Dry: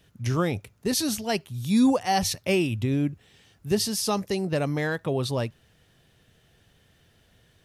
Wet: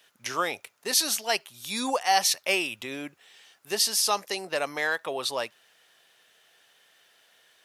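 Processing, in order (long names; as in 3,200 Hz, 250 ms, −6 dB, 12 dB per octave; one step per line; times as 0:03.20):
high-pass filter 760 Hz 12 dB per octave
level +4.5 dB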